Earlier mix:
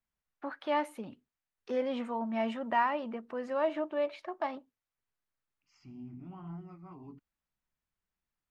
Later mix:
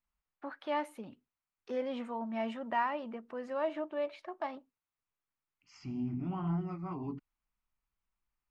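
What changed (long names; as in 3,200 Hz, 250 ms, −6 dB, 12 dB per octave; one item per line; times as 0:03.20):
first voice −3.5 dB
second voice +10.0 dB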